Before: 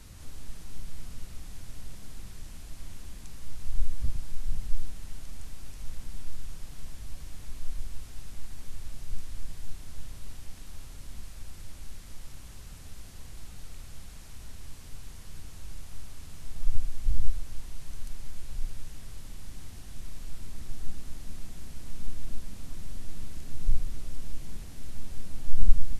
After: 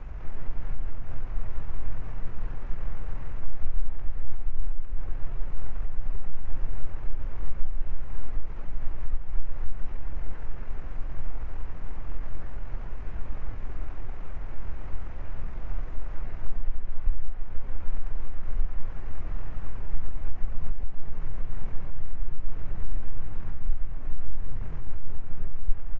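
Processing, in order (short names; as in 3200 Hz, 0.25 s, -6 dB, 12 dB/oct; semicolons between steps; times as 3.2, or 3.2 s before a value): bin magnitudes rounded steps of 15 dB; notches 60/120/180/240 Hz; compressor 8:1, threshold -27 dBFS, peak gain reduction 21.5 dB; echoes that change speed 0.12 s, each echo -3 st, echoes 3, each echo -6 dB; air absorption 380 m; pitch shift -10.5 st; gain +12.5 dB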